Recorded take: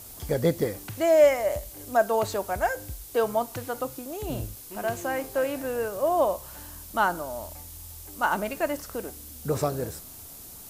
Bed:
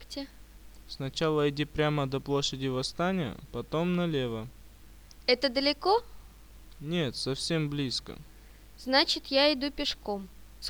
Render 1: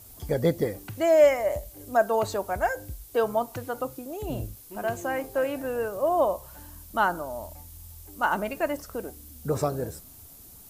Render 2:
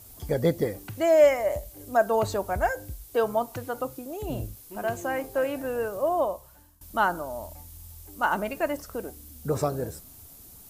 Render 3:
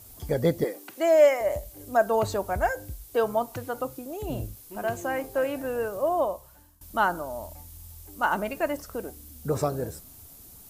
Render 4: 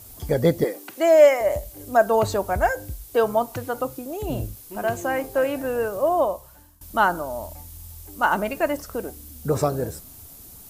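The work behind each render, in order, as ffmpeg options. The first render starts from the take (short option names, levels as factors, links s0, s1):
-af "afftdn=nr=7:nf=-44"
-filter_complex "[0:a]asettb=1/sr,asplit=3[s0][s1][s2];[s0]atrim=end=2.064[s3];[s1]atrim=start=2.06:end=2.71,asetpts=PTS-STARTPTS,afade=t=in:d=0.004:c=qsin,afade=t=out:st=0.646:d=0.004:c=qsin,lowshelf=f=180:g=6.5[s4];[s2]atrim=start=2.706[s5];[s3][s4]acrossfade=d=0.004:c1=hsin:c2=qsin[s6];[s6][s5]acrossfade=d=0.004:c1=qsin:c2=hsin,asplit=2[s7][s8];[s7]atrim=end=6.81,asetpts=PTS-STARTPTS,afade=t=out:st=5.98:d=0.83:silence=0.0944061[s9];[s8]atrim=start=6.81,asetpts=PTS-STARTPTS,afade=t=in:d=0.004:c=hsin:silence=0.0944061[s10];[s9][s10]concat=n=2:v=0:a=1"
-filter_complex "[0:a]asettb=1/sr,asplit=3[s0][s1][s2];[s0]atrim=end=0.644[s3];[s1]atrim=start=0.64:end=1.41,asetpts=PTS-STARTPTS,afade=t=in:d=0.004:c=qsin,afade=t=out:st=0.766:d=0.004:c=qsin,highpass=f=280:w=0.5412,highpass=f=280:w=1.3066[s4];[s2]atrim=start=1.406[s5];[s3][s4]acrossfade=d=0.004:c1=hsin:c2=qsin[s6];[s6][s5]acrossfade=d=0.004:c1=qsin:c2=hsin"
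-af "volume=1.68"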